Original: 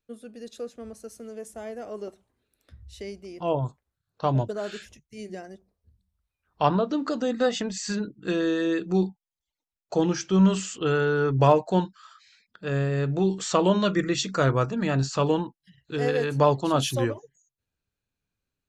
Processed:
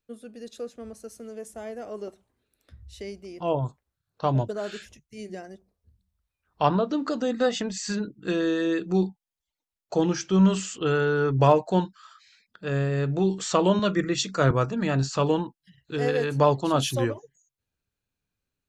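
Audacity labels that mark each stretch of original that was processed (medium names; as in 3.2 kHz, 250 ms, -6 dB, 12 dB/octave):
13.790000	14.510000	three bands expanded up and down depth 40%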